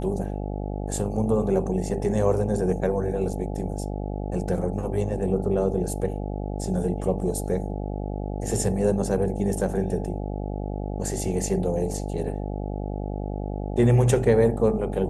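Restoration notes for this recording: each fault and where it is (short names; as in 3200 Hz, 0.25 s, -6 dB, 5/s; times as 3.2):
buzz 50 Hz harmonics 17 -30 dBFS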